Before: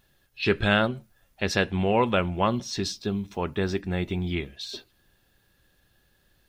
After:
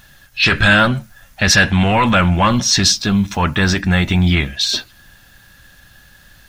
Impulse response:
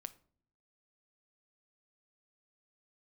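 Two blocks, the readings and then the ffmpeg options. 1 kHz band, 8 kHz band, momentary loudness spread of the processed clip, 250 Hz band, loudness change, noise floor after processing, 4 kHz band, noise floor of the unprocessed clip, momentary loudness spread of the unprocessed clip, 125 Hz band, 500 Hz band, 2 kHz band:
+11.0 dB, +21.0 dB, 6 LU, +11.5 dB, +12.5 dB, −48 dBFS, +16.5 dB, −67 dBFS, 11 LU, +13.5 dB, +4.0 dB, +15.0 dB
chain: -af "apsyclip=25.5dB,equalizer=frequency=400:width_type=o:width=0.67:gain=-12,equalizer=frequency=1600:width_type=o:width=0.67:gain=5,equalizer=frequency=6300:width_type=o:width=0.67:gain=4,volume=-7.5dB"

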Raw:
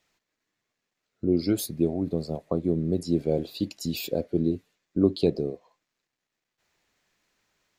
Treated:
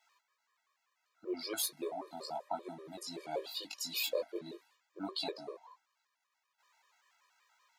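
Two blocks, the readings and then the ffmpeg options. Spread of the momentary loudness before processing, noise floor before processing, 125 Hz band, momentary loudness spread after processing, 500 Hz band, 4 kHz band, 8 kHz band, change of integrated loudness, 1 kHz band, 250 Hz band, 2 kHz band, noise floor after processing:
8 LU, −84 dBFS, −30.5 dB, 14 LU, −13.5 dB, −0.5 dB, −1.0 dB, −12.0 dB, +2.0 dB, −21.0 dB, 0.0 dB, −84 dBFS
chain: -af "highpass=frequency=1000:width_type=q:width=3.4,flanger=delay=17.5:depth=2.7:speed=2.5,afftfilt=real='re*gt(sin(2*PI*5.2*pts/sr)*(1-2*mod(floor(b*sr/1024/320),2)),0)':imag='im*gt(sin(2*PI*5.2*pts/sr)*(1-2*mod(floor(b*sr/1024/320),2)),0)':win_size=1024:overlap=0.75,volume=5.5dB"

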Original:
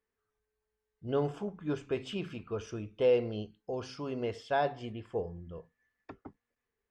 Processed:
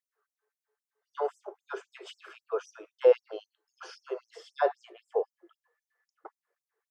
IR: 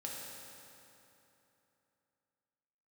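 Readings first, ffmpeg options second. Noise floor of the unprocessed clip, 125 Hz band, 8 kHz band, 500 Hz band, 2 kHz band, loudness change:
below −85 dBFS, below −40 dB, can't be measured, +3.0 dB, −0.5 dB, +3.5 dB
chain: -af "highshelf=frequency=1900:width_type=q:width=1.5:gain=-7.5,afftfilt=real='re*gte(b*sr/1024,310*pow(5600/310,0.5+0.5*sin(2*PI*3.8*pts/sr)))':imag='im*gte(b*sr/1024,310*pow(5600/310,0.5+0.5*sin(2*PI*3.8*pts/sr)))':win_size=1024:overlap=0.75,volume=6.5dB"

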